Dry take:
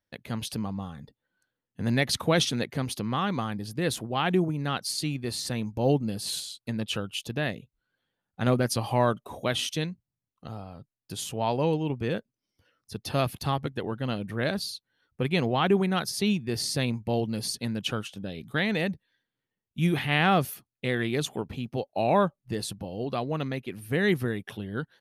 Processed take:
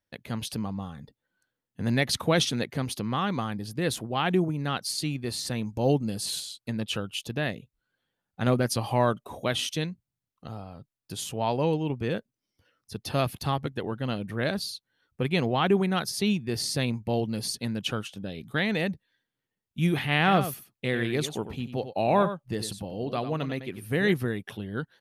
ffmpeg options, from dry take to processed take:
-filter_complex "[0:a]asettb=1/sr,asplit=3[a][b][c];[a]atrim=end=5.694[d];[b]atrim=start=5.69:end=6.26,asetpts=PTS-STARTPTS,afade=t=in:d=0.004:c=qsin,afade=t=out:st=0.566:d=0.004:c=qsin,equalizer=f=7.5k:t=o:w=1:g=6[e];[c]atrim=start=6.256[f];[d][e]acrossfade=d=0.004:c1=hsin:c2=qsin[g];[g][f]acrossfade=d=0.004:c1=qsin:c2=hsin,asettb=1/sr,asplit=3[h][i][j];[h]atrim=end=20.174[k];[i]atrim=start=20.17:end=24.13,asetpts=PTS-STARTPTS,afade=t=in:d=0.004:c=qsin,afade=t=out:st=3.956:d=0.004:c=qsin,aecho=1:1:93:0.299,atrim=end_sample=174636[l];[j]atrim=start=24.126[m];[k][l]acrossfade=d=0.004:c1=hsin:c2=qsin[n];[n][m]acrossfade=d=0.004:c1=qsin:c2=hsin"

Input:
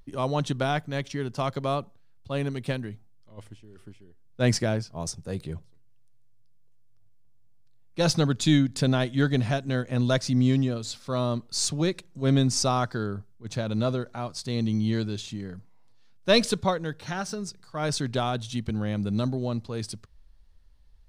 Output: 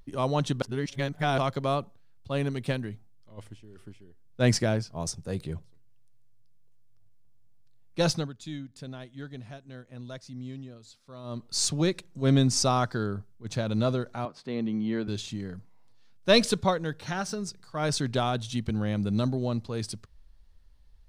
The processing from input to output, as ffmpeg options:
-filter_complex "[0:a]asettb=1/sr,asplit=3[a][b][c];[a]atrim=end=14.254[d];[b]atrim=start=14.25:end=15.08,asetpts=PTS-STARTPTS,afade=t=in:d=0.004:c=qsin,afade=t=out:st=0.826:d=0.004:c=qsin,acrossover=split=170 2800:gain=0.0708 1 0.0891[e][f][g];[e][f][g]amix=inputs=3:normalize=0[h];[c]atrim=start=15.076[i];[d][h]acrossfade=d=0.004:c1=hsin:c2=qsin[j];[j][i]acrossfade=d=0.004:c1=qsin:c2=hsin,asplit=5[k][l][m][n][o];[k]atrim=end=0.622[p];[l]atrim=start=0.618:end=1.382,asetpts=PTS-STARTPTS,areverse[q];[m]atrim=start=1.378:end=8.31,asetpts=PTS-STARTPTS,afade=t=out:st=6.612:d=0.32:silence=0.133352[r];[n]atrim=start=8.31:end=11.23,asetpts=PTS-STARTPTS,volume=-17.5dB[s];[o]atrim=start=11.23,asetpts=PTS-STARTPTS,afade=t=in:d=0.32:silence=0.133352[t];[p][q]acrossfade=d=0.004:c1=hsin:c2=hsin[u];[r][s][t]concat=n=3:v=0:a=1[v];[u][v]acrossfade=d=0.004:c1=hsin:c2=hsin"

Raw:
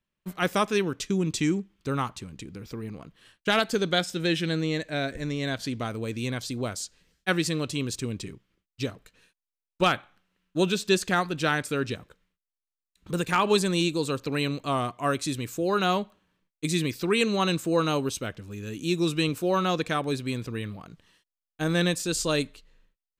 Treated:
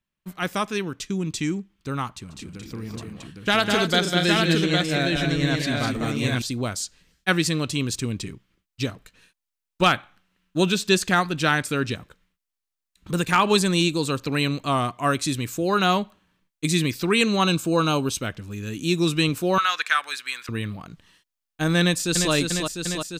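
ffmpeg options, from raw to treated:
-filter_complex "[0:a]asettb=1/sr,asplit=3[a][b][c];[a]atrim=end=2.094[d];[b]atrim=start=2.09:end=6.42,asetpts=PTS-STARTPTS,afade=t=in:d=0.004:c=qsin,afade=t=out:st=4.326:d=0.004:c=qsin,aecho=1:1:140|202|236|810:0.133|0.596|0.355|0.631,atrim=end_sample=190953[e];[c]atrim=start=6.416[f];[d][e]acrossfade=d=0.004:c1=hsin:c2=qsin[g];[g][f]acrossfade=d=0.004:c1=qsin:c2=hsin,asettb=1/sr,asplit=3[h][i][j];[h]atrim=end=17.444[k];[i]atrim=start=17.44:end=18.11,asetpts=PTS-STARTPTS,afade=t=in:d=0.004:c=qsin,afade=t=out:st=0.666:d=0.004:c=qsin,asuperstop=centerf=1900:order=4:qfactor=4.2[l];[j]atrim=start=18.106[m];[k][l]acrossfade=d=0.004:c1=hsin:c2=qsin[n];[n][m]acrossfade=d=0.004:c1=qsin:c2=hsin,asettb=1/sr,asplit=3[o][p][q];[o]atrim=end=19.584[r];[p]atrim=start=19.58:end=20.49,asetpts=PTS-STARTPTS,afade=t=in:d=0.004:c=qsin,afade=t=out:st=0.906:d=0.004:c=qsin,highpass=f=1.5k:t=q:w=2.1[s];[q]atrim=start=20.486[t];[r][s]acrossfade=d=0.004:c1=hsin:c2=qsin[u];[u][t]acrossfade=d=0.004:c1=qsin:c2=hsin,asplit=2[v][w];[w]afade=t=in:st=21.8:d=0.01,afade=t=out:st=22.32:d=0.01,aecho=0:1:350|700|1050|1400|1750|2100|2450|2800|3150|3500|3850|4200:0.562341|0.449873|0.359898|0.287919|0.230335|0.184268|0.147414|0.117932|0.0943452|0.0754762|0.0603809|0.0483048[x];[v][x]amix=inputs=2:normalize=0,equalizer=f=470:w=1.5:g=-4.5,dynaudnorm=f=200:g=31:m=5.5dB"

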